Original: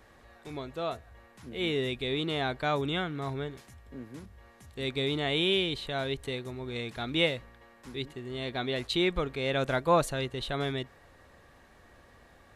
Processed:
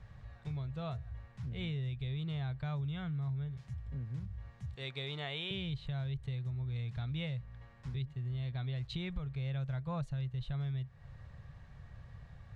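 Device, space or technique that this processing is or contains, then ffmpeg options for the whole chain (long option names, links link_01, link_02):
jukebox: -filter_complex "[0:a]asettb=1/sr,asplit=3[link_01][link_02][link_03];[link_01]atrim=end=4.754[link_04];[link_02]atrim=start=4.75:end=5.51,asetpts=PTS-STARTPTS,afade=type=in:duration=0.004:curve=qsin,afade=type=out:start_time=0.756:duration=0.004:curve=qsin,highpass=400[link_05];[link_03]atrim=start=5.506[link_06];[link_04][link_05]acrossfade=duration=0.004:curve1=hsin:curve2=qsin[link_07];[link_07][link_06]acrossfade=duration=0.004:curve1=qsin:curve2=hsin,lowpass=5700,lowshelf=frequency=200:width_type=q:width=3:gain=13.5,acompressor=threshold=-31dB:ratio=5,volume=-5.5dB"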